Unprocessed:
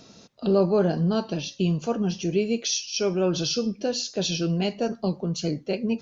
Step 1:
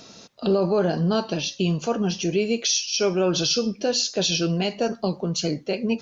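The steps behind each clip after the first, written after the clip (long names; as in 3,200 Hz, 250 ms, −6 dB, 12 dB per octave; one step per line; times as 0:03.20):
low-shelf EQ 390 Hz −7 dB
brickwall limiter −19 dBFS, peak gain reduction 6.5 dB
level +6.5 dB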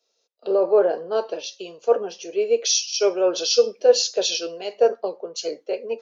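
four-pole ladder high-pass 420 Hz, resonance 60%
multiband upward and downward expander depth 100%
level +7.5 dB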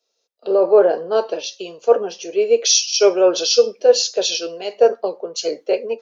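automatic gain control gain up to 11 dB
level −1 dB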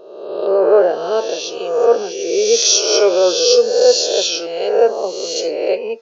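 peak hold with a rise ahead of every peak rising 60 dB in 1.16 s
level −1 dB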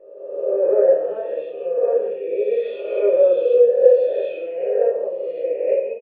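formant resonators in series e
single-tap delay 136 ms −12.5 dB
rectangular room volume 52 cubic metres, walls mixed, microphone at 0.92 metres
level −2 dB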